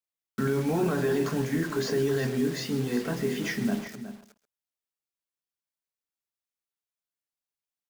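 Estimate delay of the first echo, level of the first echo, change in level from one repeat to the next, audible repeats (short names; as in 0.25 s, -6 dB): 0.133 s, -16.5 dB, no steady repeat, 3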